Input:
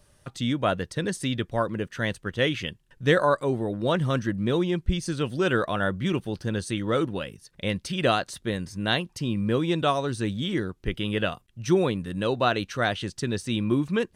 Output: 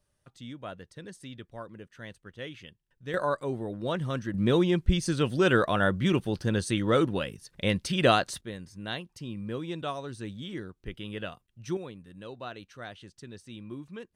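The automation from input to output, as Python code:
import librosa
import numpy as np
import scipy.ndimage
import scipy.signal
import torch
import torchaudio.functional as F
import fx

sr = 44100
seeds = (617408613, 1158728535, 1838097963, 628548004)

y = fx.gain(x, sr, db=fx.steps((0.0, -16.0), (3.14, -6.5), (4.34, 1.0), (8.41, -10.5), (11.77, -17.0)))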